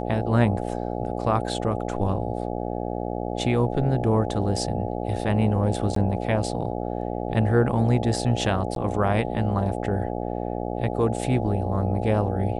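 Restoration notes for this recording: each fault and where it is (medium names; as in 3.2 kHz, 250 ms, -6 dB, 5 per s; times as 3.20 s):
buzz 60 Hz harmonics 14 -29 dBFS
5.95–5.96 s: dropout 13 ms
8.75–8.76 s: dropout 12 ms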